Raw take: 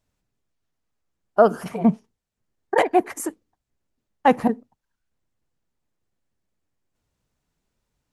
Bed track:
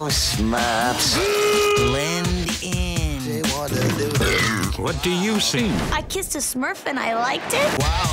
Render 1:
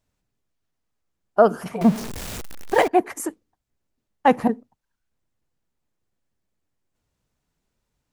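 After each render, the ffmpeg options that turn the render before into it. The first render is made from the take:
ffmpeg -i in.wav -filter_complex "[0:a]asettb=1/sr,asplit=3[link_01][link_02][link_03];[link_01]atrim=end=1.814[link_04];[link_02]atrim=start=1.81:end=2.88,asetpts=PTS-STARTPTS,afade=type=in:duration=0.004:curve=qsin,afade=type=out:start_time=1.066:duration=0.004:curve=qsin,aeval=exprs='val(0)+0.5*0.0531*sgn(val(0))':channel_layout=same[link_05];[link_03]atrim=start=2.876[link_06];[link_04][link_05]acrossfade=duration=0.004:curve1=hsin:curve2=qsin[link_07];[link_07][link_06]acrossfade=duration=0.004:curve1=qsin:curve2=hsin" out.wav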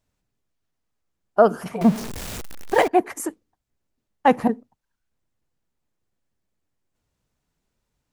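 ffmpeg -i in.wav -af anull out.wav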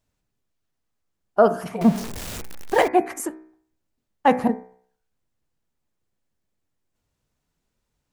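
ffmpeg -i in.wav -af "bandreject=frequency=63.01:width_type=h:width=4,bandreject=frequency=126.02:width_type=h:width=4,bandreject=frequency=189.03:width_type=h:width=4,bandreject=frequency=252.04:width_type=h:width=4,bandreject=frequency=315.05:width_type=h:width=4,bandreject=frequency=378.06:width_type=h:width=4,bandreject=frequency=441.07:width_type=h:width=4,bandreject=frequency=504.08:width_type=h:width=4,bandreject=frequency=567.09:width_type=h:width=4,bandreject=frequency=630.1:width_type=h:width=4,bandreject=frequency=693.11:width_type=h:width=4,bandreject=frequency=756.12:width_type=h:width=4,bandreject=frequency=819.13:width_type=h:width=4,bandreject=frequency=882.14:width_type=h:width=4,bandreject=frequency=945.15:width_type=h:width=4,bandreject=frequency=1008.16:width_type=h:width=4,bandreject=frequency=1071.17:width_type=h:width=4,bandreject=frequency=1134.18:width_type=h:width=4,bandreject=frequency=1197.19:width_type=h:width=4,bandreject=frequency=1260.2:width_type=h:width=4,bandreject=frequency=1323.21:width_type=h:width=4,bandreject=frequency=1386.22:width_type=h:width=4,bandreject=frequency=1449.23:width_type=h:width=4,bandreject=frequency=1512.24:width_type=h:width=4,bandreject=frequency=1575.25:width_type=h:width=4,bandreject=frequency=1638.26:width_type=h:width=4,bandreject=frequency=1701.27:width_type=h:width=4,bandreject=frequency=1764.28:width_type=h:width=4,bandreject=frequency=1827.29:width_type=h:width=4,bandreject=frequency=1890.3:width_type=h:width=4,bandreject=frequency=1953.31:width_type=h:width=4,bandreject=frequency=2016.32:width_type=h:width=4,bandreject=frequency=2079.33:width_type=h:width=4,bandreject=frequency=2142.34:width_type=h:width=4,bandreject=frequency=2205.35:width_type=h:width=4,bandreject=frequency=2268.36:width_type=h:width=4,bandreject=frequency=2331.37:width_type=h:width=4,bandreject=frequency=2394.38:width_type=h:width=4,bandreject=frequency=2457.39:width_type=h:width=4,bandreject=frequency=2520.4:width_type=h:width=4" out.wav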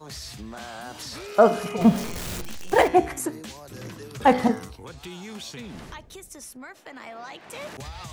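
ffmpeg -i in.wav -i bed.wav -filter_complex "[1:a]volume=-18dB[link_01];[0:a][link_01]amix=inputs=2:normalize=0" out.wav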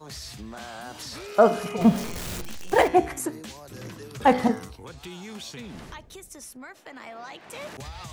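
ffmpeg -i in.wav -af "volume=-1dB" out.wav

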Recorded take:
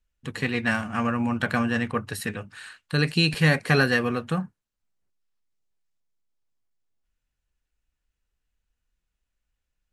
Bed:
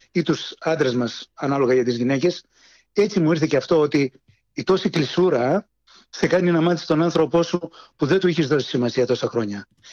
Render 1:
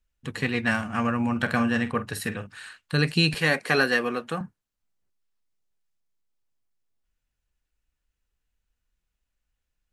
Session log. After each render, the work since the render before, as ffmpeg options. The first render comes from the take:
ffmpeg -i in.wav -filter_complex "[0:a]asettb=1/sr,asplit=3[link_01][link_02][link_03];[link_01]atrim=end=1.314[link_04];[link_02]atrim=start=1.31:end=2.47,asetpts=PTS-STARTPTS,afade=type=in:duration=0.004:curve=qsin,afade=type=out:start_time=1.156:duration=0.004:curve=qsin,asplit=2[link_05][link_06];[link_06]adelay=47,volume=-13dB[link_07];[link_05][link_07]amix=inputs=2:normalize=0,atrim=end_sample=51156[link_08];[link_03]atrim=start=2.466[link_09];[link_04][link_08]acrossfade=duration=0.004:curve1=hsin:curve2=qsin[link_10];[link_10][link_09]acrossfade=duration=0.004:curve1=qsin:curve2=hsin,asettb=1/sr,asplit=3[link_11][link_12][link_13];[link_11]atrim=end=3.394[link_14];[link_12]atrim=start=3.39:end=4.41,asetpts=PTS-STARTPTS,afade=type=in:duration=0.004:curve=qsin,afade=type=out:start_time=1.016:duration=0.004:curve=qsin,highpass=270[link_15];[link_13]atrim=start=4.406[link_16];[link_14][link_15]acrossfade=duration=0.004:curve1=hsin:curve2=qsin[link_17];[link_17][link_16]acrossfade=duration=0.004:curve1=qsin:curve2=hsin" out.wav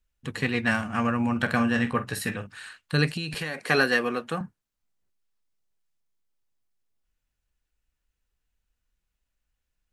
ffmpeg -i in.wav -filter_complex "[0:a]asettb=1/sr,asplit=3[link_01][link_02][link_03];[link_01]atrim=end=1.764[link_04];[link_02]atrim=start=1.76:end=2.37,asetpts=PTS-STARTPTS,afade=type=in:duration=0.004:curve=qsin,afade=type=out:start_time=0.606:duration=0.004:curve=qsin,asplit=2[link_05][link_06];[link_06]adelay=16,volume=-6dB[link_07];[link_05][link_07]amix=inputs=2:normalize=0,atrim=end_sample=26901[link_08];[link_03]atrim=start=2.366[link_09];[link_04][link_08]acrossfade=duration=0.004:curve1=hsin:curve2=qsin[link_10];[link_10][link_09]acrossfade=duration=0.004:curve1=qsin:curve2=hsin,asettb=1/sr,asplit=3[link_11][link_12][link_13];[link_11]atrim=end=3.114[link_14];[link_12]atrim=start=3.11:end=3.59,asetpts=PTS-STARTPTS,afade=type=in:duration=0.004:curve=qsin,afade=type=out:start_time=0.476:duration=0.004:curve=qsin,acompressor=threshold=-27dB:ratio=8:attack=3.2:release=140:knee=1:detection=peak[link_15];[link_13]atrim=start=3.586[link_16];[link_14][link_15]acrossfade=duration=0.004:curve1=hsin:curve2=qsin[link_17];[link_17][link_16]acrossfade=duration=0.004:curve1=qsin:curve2=hsin" out.wav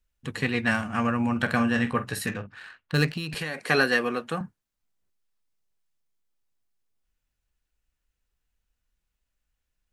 ffmpeg -i in.wav -filter_complex "[0:a]asettb=1/sr,asplit=3[link_01][link_02][link_03];[link_01]atrim=end=2.264[link_04];[link_02]atrim=start=2.26:end=3.33,asetpts=PTS-STARTPTS,afade=type=in:duration=0.004:curve=qsin,afade=type=out:start_time=1.066:duration=0.004:curve=qsin,adynamicsmooth=sensitivity=6.5:basefreq=2300[link_05];[link_03]atrim=start=3.326[link_06];[link_04][link_05]acrossfade=duration=0.004:curve1=hsin:curve2=qsin[link_07];[link_07][link_06]acrossfade=duration=0.004:curve1=qsin:curve2=hsin" out.wav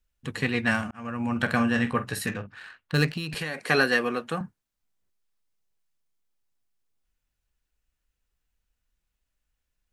ffmpeg -i in.wav -filter_complex "[0:a]asplit=2[link_01][link_02];[link_01]atrim=end=0.91,asetpts=PTS-STARTPTS,afade=type=out:start_time=0.906:duration=0.004:curve=hsin[link_03];[link_02]atrim=start=0.91,asetpts=PTS-STARTPTS,afade=type=in:duration=0.49[link_04];[link_03][link_04]concat=n=2:v=0:a=1" out.wav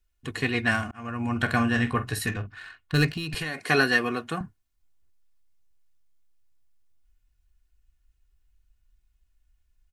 ffmpeg -i in.wav -af "aecho=1:1:2.8:0.5,asubboost=boost=3:cutoff=200" out.wav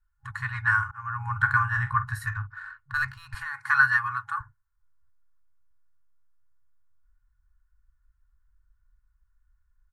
ffmpeg -i in.wav -af "afftfilt=real='re*(1-between(b*sr/4096,130,820))':imag='im*(1-between(b*sr/4096,130,820))':win_size=4096:overlap=0.75,highshelf=frequency=2000:width_type=q:width=3:gain=-11" out.wav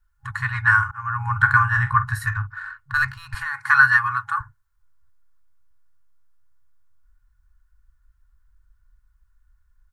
ffmpeg -i in.wav -af "volume=6.5dB,alimiter=limit=-3dB:level=0:latency=1" out.wav

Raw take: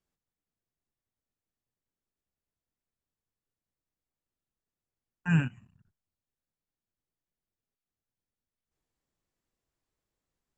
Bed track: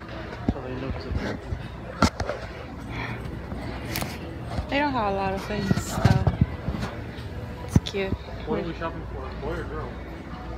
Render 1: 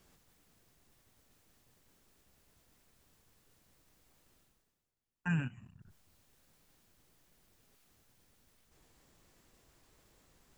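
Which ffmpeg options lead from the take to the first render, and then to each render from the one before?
ffmpeg -i in.wav -af "alimiter=level_in=0.5dB:limit=-24dB:level=0:latency=1:release=270,volume=-0.5dB,areverse,acompressor=mode=upward:threshold=-49dB:ratio=2.5,areverse" out.wav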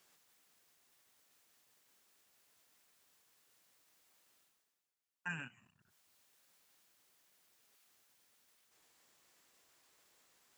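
ffmpeg -i in.wav -af "highpass=frequency=1100:poles=1" out.wav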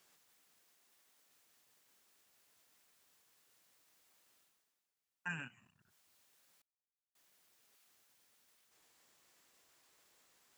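ffmpeg -i in.wav -filter_complex "[0:a]asettb=1/sr,asplit=3[link_01][link_02][link_03];[link_01]atrim=end=0.624[link_04];[link_02]atrim=start=0.62:end=1.26,asetpts=PTS-STARTPTS,afade=type=in:duration=0.004:curve=qsin,afade=type=out:start_time=0.636:duration=0.004:curve=qsin,highpass=160[link_05];[link_03]atrim=start=1.256[link_06];[link_04][link_05]acrossfade=duration=0.004:curve1=hsin:curve2=qsin[link_07];[link_07][link_06]acrossfade=duration=0.004:curve1=qsin:curve2=hsin,asplit=3[link_08][link_09][link_10];[link_08]atrim=end=6.62,asetpts=PTS-STARTPTS,afade=type=out:start_time=6.616:duration=0.004:curve=hsin[link_11];[link_09]atrim=start=6.62:end=7.15,asetpts=PTS-STARTPTS,volume=0[link_12];[link_10]atrim=start=7.15,asetpts=PTS-STARTPTS,afade=type=in:duration=0.004:curve=hsin[link_13];[link_11][link_12][link_13]concat=n=3:v=0:a=1" out.wav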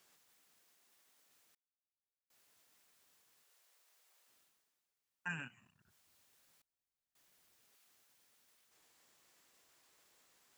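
ffmpeg -i in.wav -filter_complex "[0:a]asettb=1/sr,asplit=3[link_01][link_02][link_03];[link_01]atrim=end=3.434[link_04];[link_02]atrim=start=3.43:end=4.28,asetpts=PTS-STARTPTS,afade=type=in:duration=0.004:curve=qsin,afade=type=out:start_time=0.846:duration=0.004:curve=qsin,highpass=frequency=410:width=0.5412,highpass=frequency=410:width=1.3066[link_05];[link_03]atrim=start=4.276[link_06];[link_04][link_05]acrossfade=duration=0.004:curve1=hsin:curve2=qsin[link_07];[link_07][link_06]acrossfade=duration=0.004:curve1=qsin:curve2=hsin,asettb=1/sr,asplit=3[link_08][link_09][link_10];[link_08]atrim=end=5.864[link_11];[link_09]atrim=start=5.86:end=7.69,asetpts=PTS-STARTPTS,afade=type=in:duration=0.004:curve=qsin,afade=type=out:start_time=1.826:duration=0.004:curve=qsin,lowshelf=frequency=130:gain=8.5[link_12];[link_10]atrim=start=7.686[link_13];[link_11][link_12]acrossfade=duration=0.004:curve1=hsin:curve2=qsin[link_14];[link_14][link_13]acrossfade=duration=0.004:curve1=qsin:curve2=hsin,asplit=3[link_15][link_16][link_17];[link_15]atrim=end=1.55,asetpts=PTS-STARTPTS,afade=type=out:start_time=1.546:duration=0.004:curve=hsin[link_18];[link_16]atrim=start=1.55:end=2.3,asetpts=PTS-STARTPTS,volume=0[link_19];[link_17]atrim=start=2.3,asetpts=PTS-STARTPTS,afade=type=in:duration=0.004:curve=hsin[link_20];[link_18][link_19][link_20]concat=n=3:v=0:a=1" out.wav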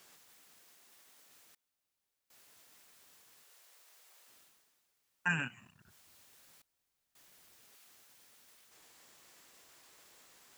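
ffmpeg -i in.wav -af "volume=9.5dB" out.wav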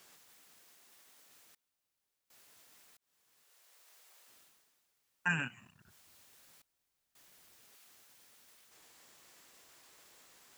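ffmpeg -i in.wav -filter_complex "[0:a]asplit=2[link_01][link_02];[link_01]atrim=end=2.97,asetpts=PTS-STARTPTS,afade=type=out:start_time=2.966:duration=0.004:curve=hsin[link_03];[link_02]atrim=start=2.97,asetpts=PTS-STARTPTS,afade=type=in:duration=0.95[link_04];[link_03][link_04]concat=n=2:v=0:a=1" out.wav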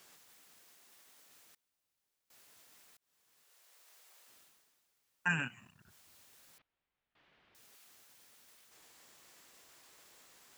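ffmpeg -i in.wav -filter_complex "[0:a]asettb=1/sr,asplit=3[link_01][link_02][link_03];[link_01]atrim=end=6.584[link_04];[link_02]atrim=start=6.58:end=7.55,asetpts=PTS-STARTPTS,afade=type=in:duration=0.004:curve=qsin,afade=type=out:start_time=0.966:duration=0.004:curve=qsin,lowpass=frequency=3200:width=0.5412,lowpass=frequency=3200:width=1.3066[link_05];[link_03]atrim=start=7.546[link_06];[link_04][link_05]acrossfade=duration=0.004:curve1=hsin:curve2=qsin[link_07];[link_07][link_06]acrossfade=duration=0.004:curve1=qsin:curve2=hsin" out.wav

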